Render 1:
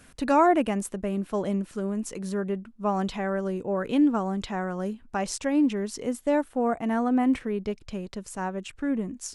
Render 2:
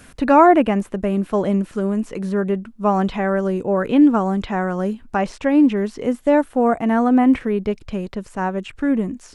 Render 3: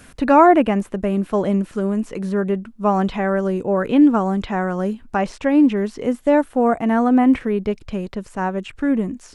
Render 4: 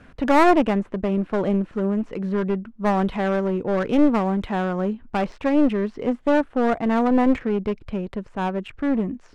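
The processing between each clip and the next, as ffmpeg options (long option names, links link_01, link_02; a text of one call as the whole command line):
ffmpeg -i in.wav -filter_complex "[0:a]acrossover=split=3100[link_01][link_02];[link_02]acompressor=threshold=-56dB:ratio=4:attack=1:release=60[link_03];[link_01][link_03]amix=inputs=2:normalize=0,volume=8.5dB" out.wav
ffmpeg -i in.wav -af anull out.wav
ffmpeg -i in.wav -af "aeval=exprs='clip(val(0),-1,0.0944)':channel_layout=same,adynamicsmooth=sensitivity=3:basefreq=2500,volume=-1.5dB" out.wav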